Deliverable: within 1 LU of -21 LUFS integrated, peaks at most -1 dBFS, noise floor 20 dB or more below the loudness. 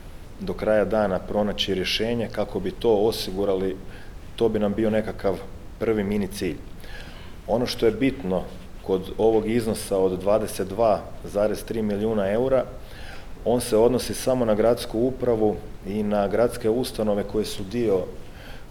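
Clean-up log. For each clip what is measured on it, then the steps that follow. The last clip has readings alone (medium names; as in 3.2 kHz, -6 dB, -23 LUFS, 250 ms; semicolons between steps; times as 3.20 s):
noise floor -40 dBFS; noise floor target -44 dBFS; loudness -24.0 LUFS; peak level -5.5 dBFS; loudness target -21.0 LUFS
-> noise print and reduce 6 dB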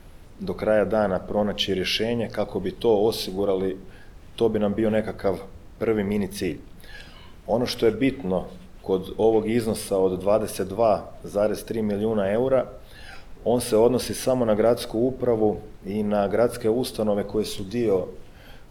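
noise floor -45 dBFS; loudness -24.0 LUFS; peak level -6.0 dBFS; loudness target -21.0 LUFS
-> trim +3 dB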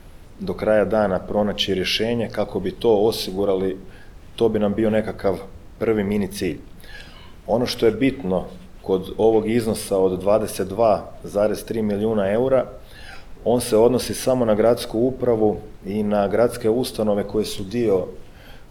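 loudness -21.0 LUFS; peak level -3.0 dBFS; noise floor -42 dBFS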